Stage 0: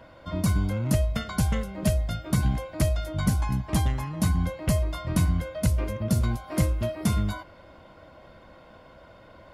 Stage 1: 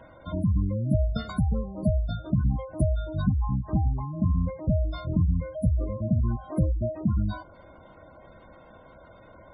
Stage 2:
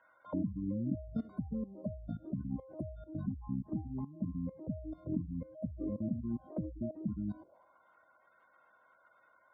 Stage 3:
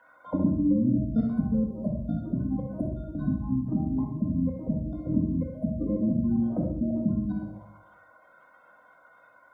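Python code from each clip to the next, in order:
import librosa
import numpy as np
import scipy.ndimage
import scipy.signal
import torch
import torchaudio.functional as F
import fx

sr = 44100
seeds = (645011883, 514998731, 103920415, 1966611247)

y1 = fx.dynamic_eq(x, sr, hz=2100.0, q=1.5, threshold_db=-53.0, ratio=4.0, max_db=-5)
y1 = fx.spec_gate(y1, sr, threshold_db=-20, keep='strong')
y2 = fx.level_steps(y1, sr, step_db=16)
y2 = fx.auto_wah(y2, sr, base_hz=270.0, top_hz=1500.0, q=2.8, full_db=-33.5, direction='down')
y2 = F.gain(torch.from_numpy(y2), 6.5).numpy()
y3 = fx.echo_feedback(y2, sr, ms=65, feedback_pct=47, wet_db=-8.0)
y3 = fx.room_shoebox(y3, sr, seeds[0], volume_m3=660.0, walls='furnished', distance_m=1.9)
y3 = F.gain(torch.from_numpy(y3), 7.5).numpy()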